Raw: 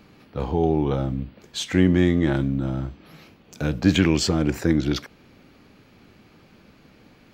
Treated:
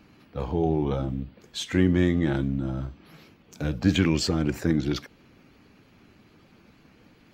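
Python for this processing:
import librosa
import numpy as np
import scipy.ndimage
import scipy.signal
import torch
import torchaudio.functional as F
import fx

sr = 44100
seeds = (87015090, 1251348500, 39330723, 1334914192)

y = fx.spec_quant(x, sr, step_db=15)
y = F.gain(torch.from_numpy(y), -3.0).numpy()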